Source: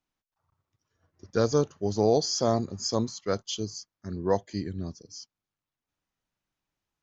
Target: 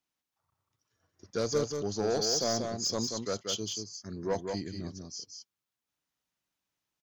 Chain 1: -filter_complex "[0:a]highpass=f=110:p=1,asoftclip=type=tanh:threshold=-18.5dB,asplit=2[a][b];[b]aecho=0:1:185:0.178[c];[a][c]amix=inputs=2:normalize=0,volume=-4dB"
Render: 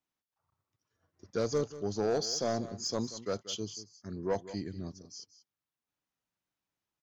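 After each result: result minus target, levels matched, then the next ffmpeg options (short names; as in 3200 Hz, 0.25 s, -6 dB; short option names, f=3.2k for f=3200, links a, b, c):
echo-to-direct -10 dB; 4000 Hz band -3.0 dB
-filter_complex "[0:a]highpass=f=110:p=1,asoftclip=type=tanh:threshold=-18.5dB,asplit=2[a][b];[b]aecho=0:1:185:0.562[c];[a][c]amix=inputs=2:normalize=0,volume=-4dB"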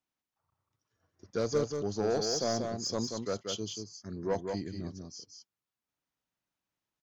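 4000 Hz band -3.0 dB
-filter_complex "[0:a]highpass=f=110:p=1,highshelf=f=2.4k:g=6.5,asoftclip=type=tanh:threshold=-18.5dB,asplit=2[a][b];[b]aecho=0:1:185:0.562[c];[a][c]amix=inputs=2:normalize=0,volume=-4dB"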